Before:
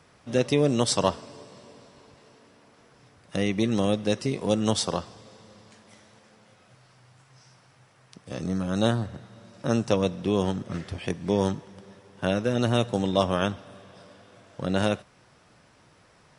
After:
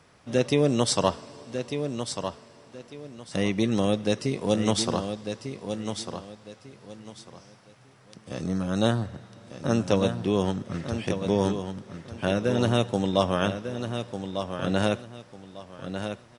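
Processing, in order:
repeating echo 1,198 ms, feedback 25%, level −8 dB

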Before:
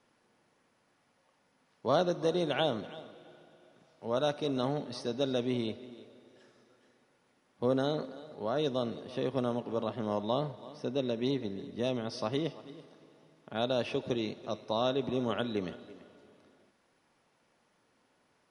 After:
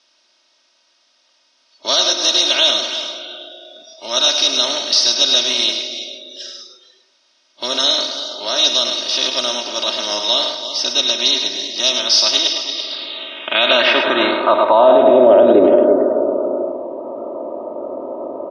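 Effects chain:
compressor on every frequency bin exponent 0.6
band-pass filter sweep 5,500 Hz → 500 Hz, 0:12.62–0:15.47
dynamic equaliser 5,200 Hz, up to +5 dB, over −60 dBFS, Q 0.89
comb filter 3.2 ms, depth 84%
noise reduction from a noise print of the clip's start 21 dB
high-frequency loss of the air 65 metres
single-tap delay 105 ms −7 dB
boost into a limiter +28.5 dB
level −1 dB

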